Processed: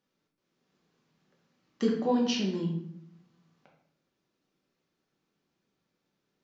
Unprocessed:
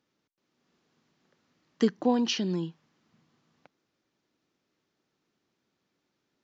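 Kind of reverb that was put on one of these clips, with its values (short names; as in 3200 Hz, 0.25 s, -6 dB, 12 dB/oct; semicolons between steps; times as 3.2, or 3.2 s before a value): shoebox room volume 150 m³, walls mixed, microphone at 1.1 m; gain -5.5 dB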